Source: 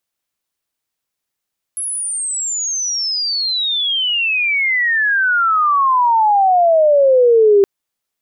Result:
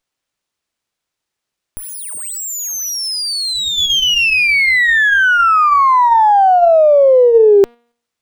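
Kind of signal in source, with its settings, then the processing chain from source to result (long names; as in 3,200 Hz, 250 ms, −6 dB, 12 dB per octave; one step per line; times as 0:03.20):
glide logarithmic 11,000 Hz → 390 Hz −19.5 dBFS → −6.5 dBFS 5.87 s
hum removal 237 Hz, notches 17
in parallel at −1.5 dB: output level in coarse steps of 18 dB
on the sum: windowed peak hold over 3 samples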